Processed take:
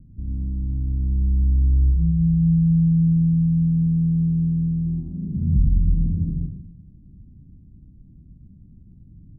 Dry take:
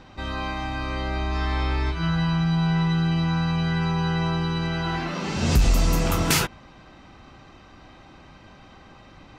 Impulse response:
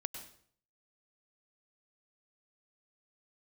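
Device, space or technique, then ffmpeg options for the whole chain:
club heard from the street: -filter_complex "[0:a]alimiter=limit=-14.5dB:level=0:latency=1:release=278,lowpass=f=200:w=0.5412,lowpass=f=200:w=1.3066[a];[1:a]atrim=start_sample=2205[b];[a][b]afir=irnorm=-1:irlink=0,volume=6.5dB"

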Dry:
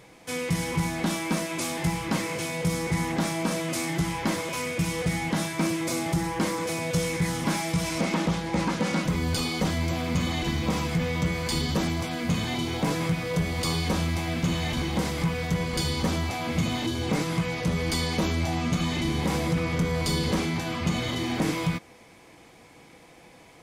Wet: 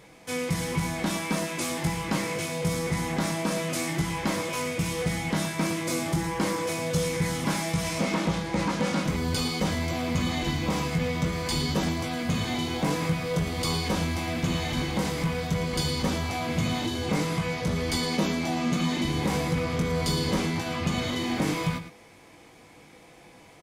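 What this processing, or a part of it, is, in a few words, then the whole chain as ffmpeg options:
slapback doubling: -filter_complex "[0:a]asettb=1/sr,asplit=3[a][b][c];[a]atrim=end=17.974[d];[b]atrim=start=17.97:end=19.05,asetpts=PTS-STARTPTS,afade=t=in:d=0.004:c=qsin,afade=t=out:st=1.076:d=0.004:c=qsin,lowshelf=f=130:t=q:w=1.5:g=-11[e];[c]atrim=start=19.046[f];[d][e]acrossfade=d=0.004:c1=hsin:c2=qsin[g];[g][f]acrossfade=d=0.004:c1=qsin:c2=hsin,asplit=3[h][i][j];[i]adelay=20,volume=-8dB[k];[j]adelay=112,volume=-11.5dB[l];[h][k][l]amix=inputs=3:normalize=0,volume=-1dB"

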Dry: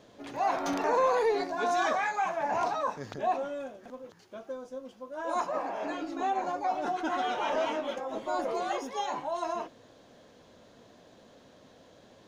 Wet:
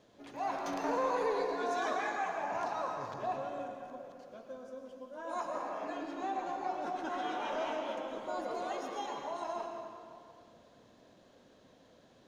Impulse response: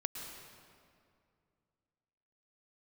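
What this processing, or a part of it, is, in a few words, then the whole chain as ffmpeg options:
stairwell: -filter_complex "[1:a]atrim=start_sample=2205[a];[0:a][a]afir=irnorm=-1:irlink=0,volume=-6.5dB"

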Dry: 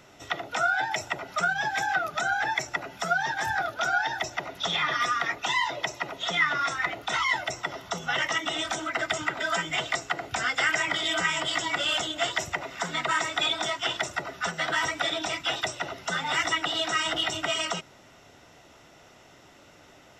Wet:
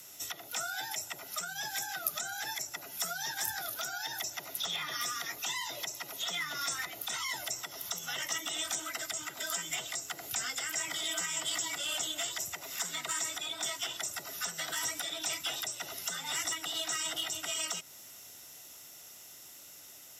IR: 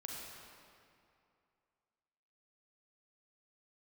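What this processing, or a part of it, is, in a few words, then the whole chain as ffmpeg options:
FM broadcast chain: -filter_complex "[0:a]highpass=62,dynaudnorm=f=830:g=11:m=3.5dB,acrossover=split=520|1400|2900[a][b][c][d];[a]acompressor=threshold=-39dB:ratio=4[e];[b]acompressor=threshold=-35dB:ratio=4[f];[c]acompressor=threshold=-38dB:ratio=4[g];[d]acompressor=threshold=-42dB:ratio=4[h];[e][f][g][h]amix=inputs=4:normalize=0,aemphasis=mode=production:type=75fm,alimiter=limit=-19.5dB:level=0:latency=1:release=398,asoftclip=type=hard:threshold=-22dB,lowpass=f=15k:w=0.5412,lowpass=f=15k:w=1.3066,aemphasis=mode=production:type=75fm,volume=-8.5dB"

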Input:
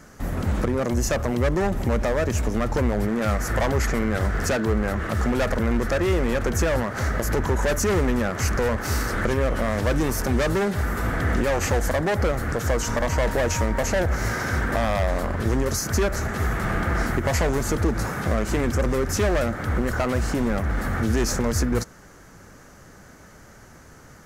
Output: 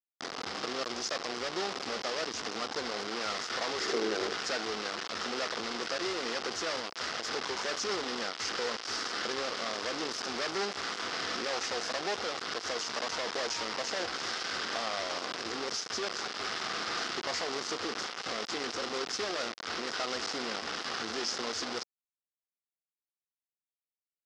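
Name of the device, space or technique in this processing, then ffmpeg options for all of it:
hand-held game console: -filter_complex "[0:a]acrusher=bits=3:mix=0:aa=0.000001,highpass=480,equalizer=f=590:t=q:w=4:g=-7,equalizer=f=910:t=q:w=4:g=-5,equalizer=f=1.7k:t=q:w=4:g=-4,equalizer=f=2.4k:t=q:w=4:g=-4,equalizer=f=5.1k:t=q:w=4:g=7,lowpass=f=5.7k:w=0.5412,lowpass=f=5.7k:w=1.3066,asettb=1/sr,asplit=3[a][b][c];[a]atrim=end=3.804[d];[b]atrim=start=3.8:end=4.34,asetpts=PTS-STARTPTS,afade=t=in:d=0.004:c=qsin,afade=t=out:st=0.536:d=0.004:c=qsin,equalizer=f=390:w=2.1:g=14[e];[c]atrim=start=4.336[f];[d][e]acrossfade=d=0.004:c1=hsin:c2=qsin[g];[g][f]acrossfade=d=0.004:c1=qsin:c2=hsin,volume=-7dB"

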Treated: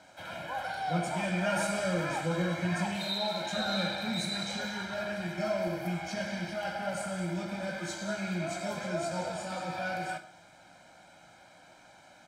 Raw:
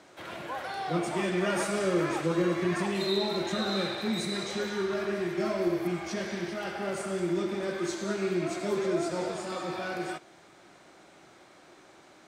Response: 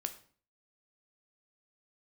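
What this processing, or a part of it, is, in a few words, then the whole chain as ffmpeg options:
microphone above a desk: -filter_complex "[0:a]aecho=1:1:1.3:0.87[a];[1:a]atrim=start_sample=2205[b];[a][b]afir=irnorm=-1:irlink=0,asettb=1/sr,asplit=3[c][d][e];[c]atrim=end=2.964[f];[d]atrim=start=2.96:end=3.57,asetpts=PTS-STARTPTS,afade=t=in:d=0.004:c=qsin,afade=t=out:st=0.606:d=0.004:c=qsin,lowshelf=f=190:g=-9[g];[e]atrim=start=3.566[h];[f][g]acrossfade=d=0.004:c1=hsin:c2=qsin[i];[i][h]acrossfade=d=0.004:c1=qsin:c2=hsin,volume=-2.5dB"

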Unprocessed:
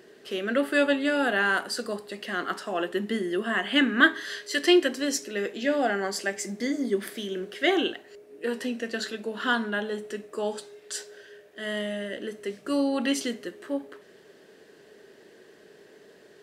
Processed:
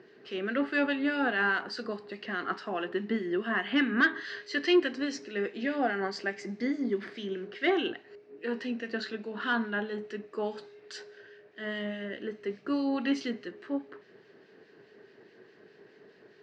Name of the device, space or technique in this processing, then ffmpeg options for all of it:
guitar amplifier with harmonic tremolo: -filter_complex "[0:a]acrossover=split=1800[a][b];[a]aeval=exprs='val(0)*(1-0.5/2+0.5/2*cos(2*PI*4.8*n/s))':c=same[c];[b]aeval=exprs='val(0)*(1-0.5/2-0.5/2*cos(2*PI*4.8*n/s))':c=same[d];[c][d]amix=inputs=2:normalize=0,asoftclip=type=tanh:threshold=-14dB,highpass=87,equalizer=f=120:t=q:w=4:g=6,equalizer=f=580:t=q:w=4:g=-6,equalizer=f=3.4k:t=q:w=4:g=-7,lowpass=f=4.5k:w=0.5412,lowpass=f=4.5k:w=1.3066"

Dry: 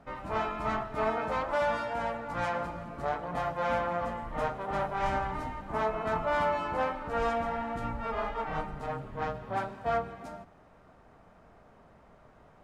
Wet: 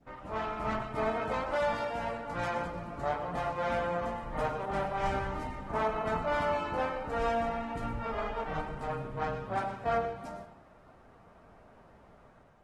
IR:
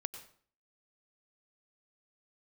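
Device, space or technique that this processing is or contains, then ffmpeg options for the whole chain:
speakerphone in a meeting room: -filter_complex "[0:a]adynamicequalizer=threshold=0.00891:dfrequency=1100:dqfactor=0.9:tfrequency=1100:tqfactor=0.9:attack=5:release=100:ratio=0.375:range=2:mode=cutabove:tftype=bell,asettb=1/sr,asplit=3[a][b][c];[a]atrim=end=7.104[d];[b]atrim=start=7.1:end=7.85,asetpts=PTS-STARTPTS,afade=t=in:d=0.004:c=qsin,afade=t=out:st=0.746:d=0.004:c=qsin,asplit=2[e][f];[f]adelay=42,volume=-11dB[g];[e][g]amix=inputs=2:normalize=0,atrim=end_sample=33075[h];[c]atrim=start=7.846[i];[d][h]acrossfade=d=0.004:c1=hsin:c2=qsin[j];[j][i]acrossfade=d=0.004:c1=qsin:c2=hsin[k];[1:a]atrim=start_sample=2205[l];[k][l]afir=irnorm=-1:irlink=0,dynaudnorm=f=120:g=7:m=5dB,volume=-3.5dB" -ar 48000 -c:a libopus -b:a 16k

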